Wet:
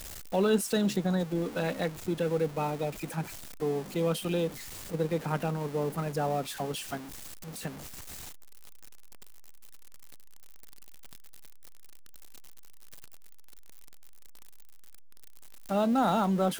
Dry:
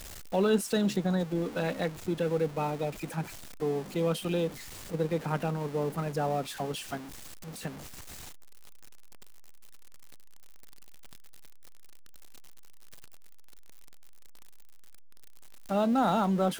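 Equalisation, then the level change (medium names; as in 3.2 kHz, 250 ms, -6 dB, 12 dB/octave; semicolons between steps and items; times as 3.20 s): treble shelf 8.2 kHz +4.5 dB; 0.0 dB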